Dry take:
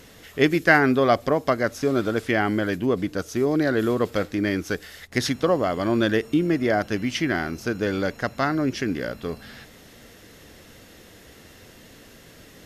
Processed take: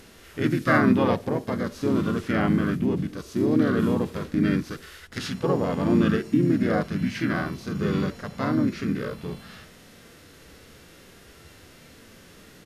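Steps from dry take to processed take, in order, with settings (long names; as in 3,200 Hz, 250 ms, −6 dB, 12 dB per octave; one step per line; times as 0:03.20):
dynamic equaliser 200 Hz, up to +5 dB, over −40 dBFS, Q 3
pitch-shifted copies added −5 semitones −3 dB, −3 semitones −4 dB
harmonic and percussive parts rebalanced percussive −14 dB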